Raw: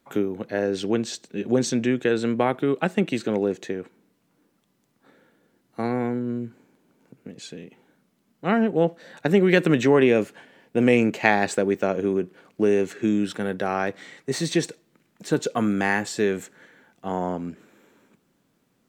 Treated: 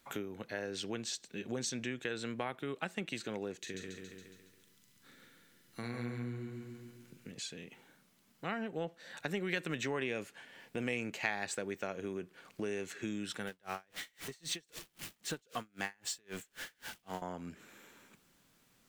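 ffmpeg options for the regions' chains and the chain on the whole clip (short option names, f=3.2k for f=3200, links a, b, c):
-filter_complex "[0:a]asettb=1/sr,asplit=3[a][b][c];[a]atrim=end=3.594[d];[b]atrim=start=3.59:end=7.32,asetpts=PTS-STARTPTS,afade=t=in:d=0.004:c=qsin,afade=t=out:st=3.726:d=0.004:c=qsin,equalizer=f=790:t=o:w=1.5:g=-12.5,asplit=2[e][f];[f]adelay=42,volume=-7dB[g];[e][g]amix=inputs=2:normalize=0,atrim=end_sample=164493,aecho=1:1:139|278|417|556|695|834|973:0.631|0.322|0.164|0.0837|0.0427|0.0218|0.0111,atrim=end_sample=164493[h];[c]atrim=start=7.316[i];[d][h]acrossfade=d=0.004:c1=hsin:c2=qsin[j];[j][i]acrossfade=d=0.004:c1=qsin:c2=hsin,asettb=1/sr,asplit=3[k][l][m];[k]atrim=end=13.474[n];[l]atrim=start=13.47:end=17.22,asetpts=PTS-STARTPTS,afade=t=in:d=0.004:c=qsin,afade=t=out:st=3.746:d=0.004:c=qsin,aeval=exprs='val(0)+0.5*0.0178*sgn(val(0))':c=same,equalizer=f=3k:t=o:w=0.29:g=4,aeval=exprs='val(0)*pow(10,-39*(0.5-0.5*cos(2*PI*3.8*n/s))/20)':c=same[o];[m]atrim=start=17.216[p];[n][o]acrossfade=d=0.004:c1=hsin:c2=qsin[q];[q][p]acrossfade=d=0.004:c1=qsin:c2=hsin,equalizer=f=300:w=0.32:g=-12,acompressor=threshold=-51dB:ratio=2,volume=5.5dB"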